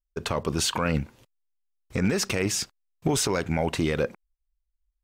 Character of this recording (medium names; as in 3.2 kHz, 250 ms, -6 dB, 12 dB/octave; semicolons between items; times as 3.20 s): noise floor -80 dBFS; spectral tilt -4.0 dB/octave